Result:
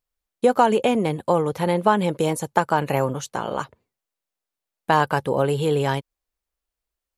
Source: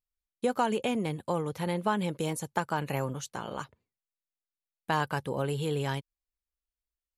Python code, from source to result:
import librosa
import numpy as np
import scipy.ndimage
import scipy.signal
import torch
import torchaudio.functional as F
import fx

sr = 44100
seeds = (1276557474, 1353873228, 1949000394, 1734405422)

y = fx.peak_eq(x, sr, hz=620.0, db=6.0, octaves=2.3)
y = y * 10.0 ** (6.0 / 20.0)